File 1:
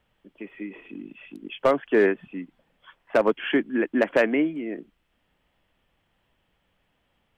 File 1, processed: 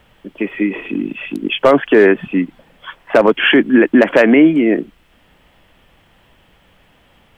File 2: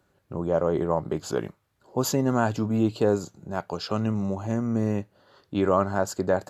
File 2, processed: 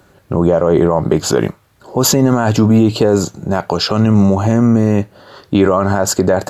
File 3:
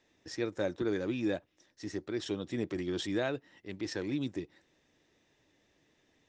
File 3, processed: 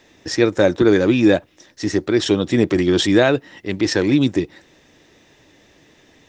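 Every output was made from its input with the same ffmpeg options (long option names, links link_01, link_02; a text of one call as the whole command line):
ffmpeg -i in.wav -af "alimiter=level_in=19.5dB:limit=-1dB:release=50:level=0:latency=1,volume=-1dB" out.wav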